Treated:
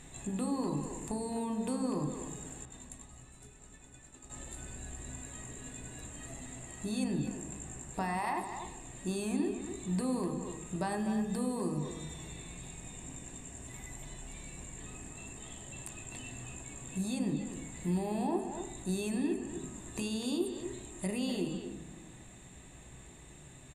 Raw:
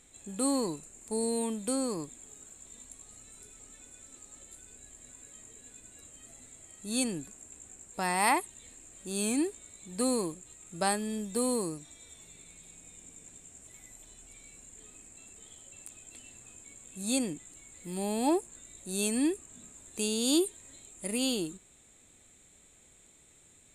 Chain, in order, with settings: 2.65–4.30 s: expander -44 dBFS; treble shelf 3.7 kHz -10 dB; comb 1.1 ms, depth 40%; in parallel at 0 dB: gain riding within 4 dB; on the sum: peak limiter -21.5 dBFS, peak gain reduction 10 dB; compression 5:1, threshold -37 dBFS, peak gain reduction 11 dB; speakerphone echo 250 ms, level -7 dB; on a send at -5 dB: reverberation RT60 1.2 s, pre-delay 3 ms; on the sum: trim +3 dB

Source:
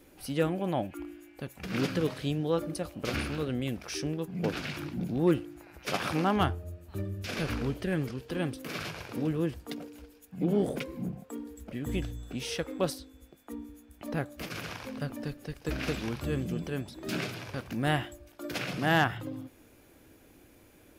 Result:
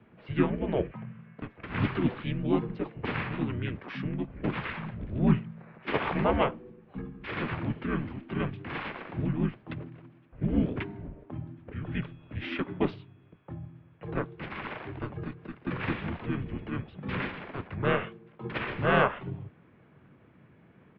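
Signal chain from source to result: mistuned SSB -130 Hz 250–3400 Hz; harmony voices -5 st -1 dB, -4 st -5 dB; tape noise reduction on one side only decoder only

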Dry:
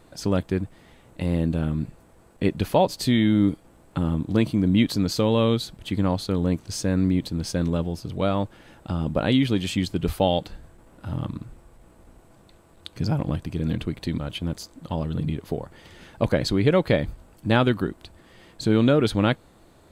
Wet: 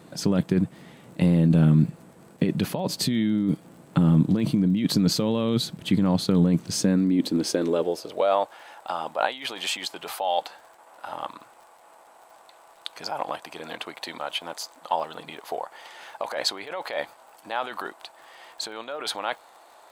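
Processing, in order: bass shelf 190 Hz -2 dB; compressor with a negative ratio -25 dBFS, ratio -1; high-pass sweep 160 Hz -> 800 Hz, 6.66–8.57 s; crackle 58 per s -44 dBFS; trim +1 dB

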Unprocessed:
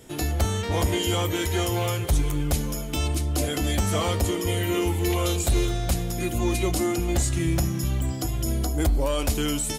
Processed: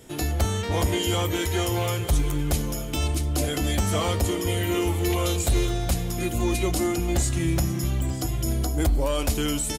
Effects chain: delay 934 ms -17.5 dB

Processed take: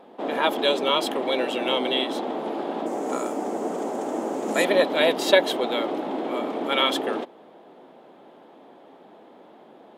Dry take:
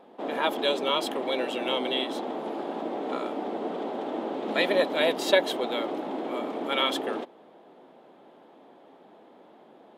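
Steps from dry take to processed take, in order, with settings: 2.86–4.65 s: resonant high shelf 5.1 kHz +12 dB, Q 3; trim +4 dB

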